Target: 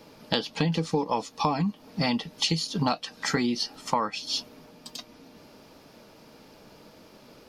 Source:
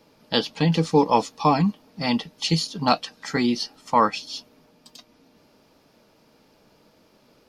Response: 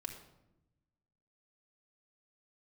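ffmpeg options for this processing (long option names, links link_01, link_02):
-af "acompressor=threshold=-29dB:ratio=12,volume=6.5dB"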